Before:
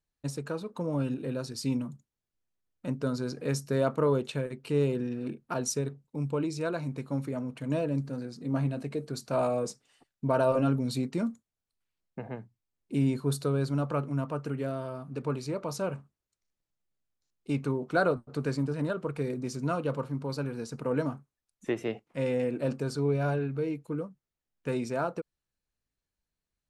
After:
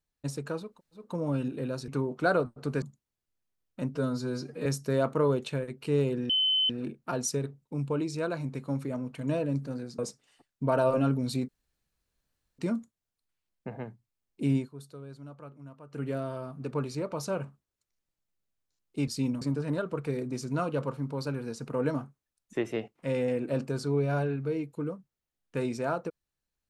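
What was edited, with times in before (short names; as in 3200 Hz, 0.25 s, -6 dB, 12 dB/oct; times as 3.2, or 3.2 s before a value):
0.69 insert room tone 0.34 s, crossfade 0.24 s
1.54–1.88 swap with 17.59–18.53
3.01–3.48 stretch 1.5×
5.12 add tone 3050 Hz -22.5 dBFS 0.40 s
8.41–9.6 cut
11.1 insert room tone 1.10 s
13.07–14.54 dip -16.5 dB, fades 0.13 s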